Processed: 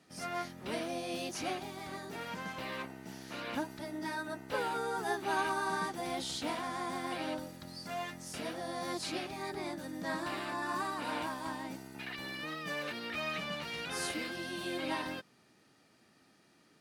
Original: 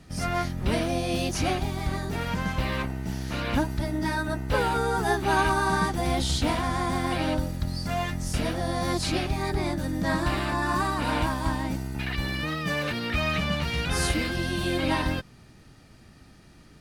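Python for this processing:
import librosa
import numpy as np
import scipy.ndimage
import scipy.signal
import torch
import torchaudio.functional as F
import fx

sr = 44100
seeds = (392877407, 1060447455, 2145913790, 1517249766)

y = scipy.signal.sosfilt(scipy.signal.butter(2, 260.0, 'highpass', fs=sr, output='sos'), x)
y = F.gain(torch.from_numpy(y), -9.0).numpy()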